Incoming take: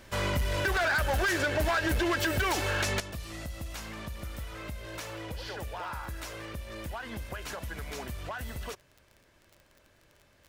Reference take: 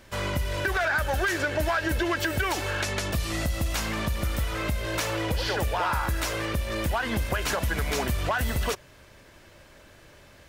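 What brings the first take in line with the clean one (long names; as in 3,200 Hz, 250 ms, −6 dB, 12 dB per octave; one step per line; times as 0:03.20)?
clipped peaks rebuilt −24 dBFS
click removal
level correction +11.5 dB, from 0:03.00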